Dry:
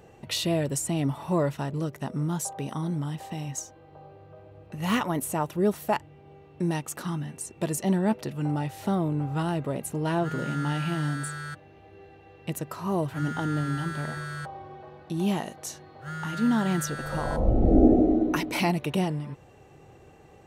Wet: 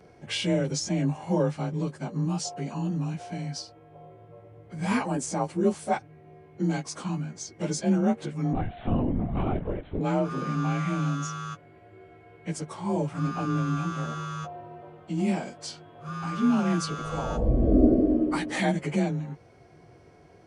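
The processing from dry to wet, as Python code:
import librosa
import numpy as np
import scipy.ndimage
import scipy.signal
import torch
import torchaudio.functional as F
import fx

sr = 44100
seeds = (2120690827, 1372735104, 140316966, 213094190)

y = fx.partial_stretch(x, sr, pct=91)
y = fx.lpc_vocoder(y, sr, seeds[0], excitation='whisper', order=16, at=(8.53, 10.01))
y = y * librosa.db_to_amplitude(1.5)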